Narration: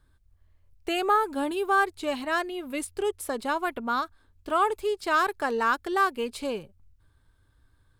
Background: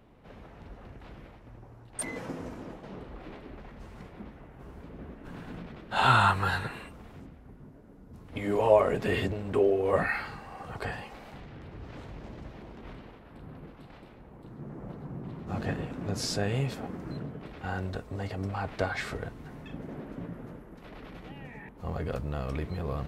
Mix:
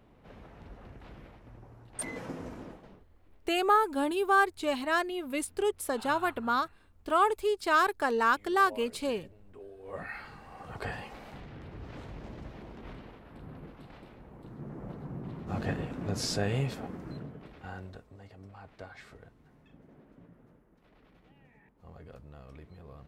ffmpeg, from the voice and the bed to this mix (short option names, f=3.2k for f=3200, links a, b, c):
-filter_complex "[0:a]adelay=2600,volume=-1dB[a];[1:a]volume=22dB,afade=t=out:st=2.61:d=0.43:silence=0.0749894,afade=t=in:st=9.77:d=1.3:silence=0.0630957,afade=t=out:st=16.51:d=1.67:silence=0.158489[b];[a][b]amix=inputs=2:normalize=0"